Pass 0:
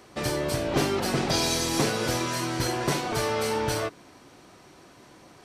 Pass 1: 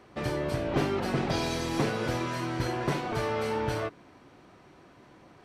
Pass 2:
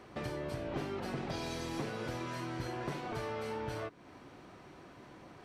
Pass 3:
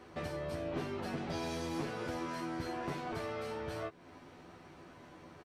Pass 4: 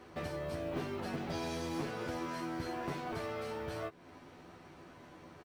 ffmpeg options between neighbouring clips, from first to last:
ffmpeg -i in.wav -af "bass=frequency=250:gain=2,treble=frequency=4000:gain=-12,volume=-3dB" out.wav
ffmpeg -i in.wav -af "acompressor=threshold=-42dB:ratio=2.5,volume=1dB" out.wav
ffmpeg -i in.wav -filter_complex "[0:a]asplit=2[link_01][link_02];[link_02]adelay=12,volume=-2.5dB[link_03];[link_01][link_03]amix=inputs=2:normalize=0,volume=-2.5dB" out.wav
ffmpeg -i in.wav -af "acrusher=bits=8:mode=log:mix=0:aa=0.000001" out.wav

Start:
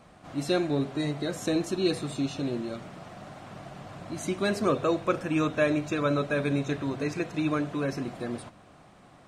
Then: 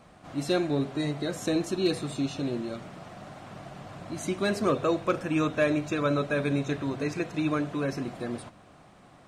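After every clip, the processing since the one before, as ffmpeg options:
ffmpeg -i in.wav -af "asoftclip=type=hard:threshold=-16dB" out.wav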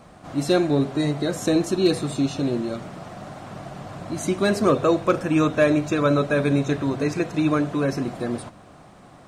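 ffmpeg -i in.wav -af "equalizer=frequency=2600:width=0.95:gain=-3.5,volume=7dB" out.wav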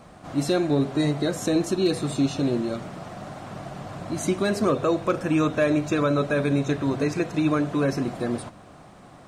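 ffmpeg -i in.wav -af "alimiter=limit=-13dB:level=0:latency=1:release=210" out.wav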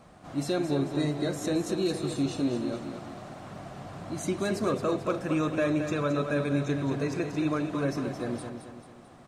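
ffmpeg -i in.wav -af "aecho=1:1:220|440|660|880|1100:0.398|0.187|0.0879|0.0413|0.0194,volume=-6dB" out.wav

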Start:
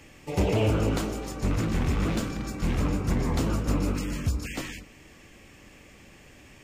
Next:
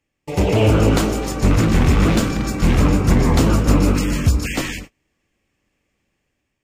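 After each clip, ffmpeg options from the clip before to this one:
ffmpeg -i in.wav -af "agate=range=-31dB:threshold=-44dB:ratio=16:detection=peak,dynaudnorm=framelen=250:gausssize=5:maxgain=6dB,volume=5.5dB" out.wav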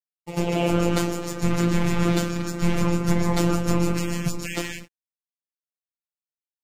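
ffmpeg -i in.wav -af "aeval=exprs='sgn(val(0))*max(abs(val(0))-0.00422,0)':channel_layout=same,afftfilt=real='hypot(re,im)*cos(PI*b)':imag='0':win_size=1024:overlap=0.75,volume=-2dB" out.wav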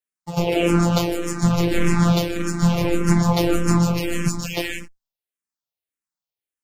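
ffmpeg -i in.wav -filter_complex "[0:a]asplit=2[link_01][link_02];[link_02]afreqshift=-1.7[link_03];[link_01][link_03]amix=inputs=2:normalize=1,volume=6.5dB" out.wav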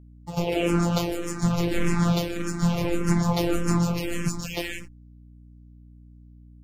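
ffmpeg -i in.wav -af "aeval=exprs='val(0)+0.00794*(sin(2*PI*60*n/s)+sin(2*PI*2*60*n/s)/2+sin(2*PI*3*60*n/s)/3+sin(2*PI*4*60*n/s)/4+sin(2*PI*5*60*n/s)/5)':channel_layout=same,volume=-5dB" out.wav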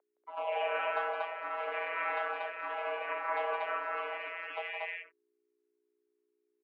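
ffmpeg -i in.wav -af "highpass=frequency=490:width_type=q:width=0.5412,highpass=frequency=490:width_type=q:width=1.307,lowpass=frequency=2400:width_type=q:width=0.5176,lowpass=frequency=2400:width_type=q:width=0.7071,lowpass=frequency=2400:width_type=q:width=1.932,afreqshift=120,aecho=1:1:166.2|236.2:0.501|0.891,volume=-4dB" out.wav

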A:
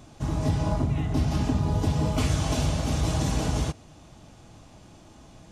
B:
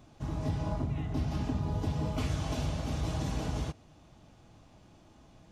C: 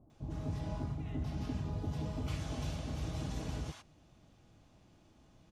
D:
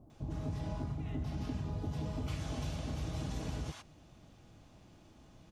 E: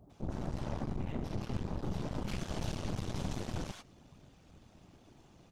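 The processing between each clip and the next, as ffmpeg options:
ffmpeg -i in.wav -af "equalizer=frequency=8800:width_type=o:width=1.2:gain=-6.5,volume=-7.5dB" out.wav
ffmpeg -i in.wav -filter_complex "[0:a]acrossover=split=860[link_01][link_02];[link_02]adelay=100[link_03];[link_01][link_03]amix=inputs=2:normalize=0,volume=-5.5dB" out.wav
ffmpeg -i in.wav -af "acompressor=threshold=-42dB:ratio=2,volume=4.5dB" out.wav
ffmpeg -i in.wav -af "afftfilt=real='hypot(re,im)*cos(2*PI*random(0))':imag='hypot(re,im)*sin(2*PI*random(1))':win_size=512:overlap=0.75,aeval=exprs='0.0316*(cos(1*acos(clip(val(0)/0.0316,-1,1)))-cos(1*PI/2))+0.00501*(cos(8*acos(clip(val(0)/0.0316,-1,1)))-cos(8*PI/2))':channel_layout=same,volume=5.5dB" out.wav

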